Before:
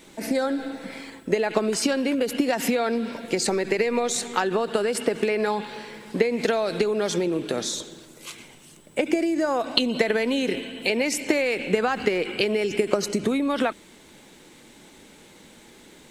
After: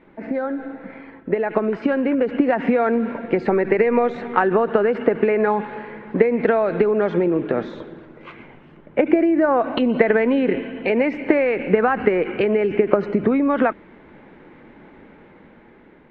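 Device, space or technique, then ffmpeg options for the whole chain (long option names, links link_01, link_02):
action camera in a waterproof case: -af "lowpass=frequency=2000:width=0.5412,lowpass=frequency=2000:width=1.3066,dynaudnorm=framelen=500:gausssize=7:maxgain=11.5dB" -ar 48000 -c:a aac -b:a 96k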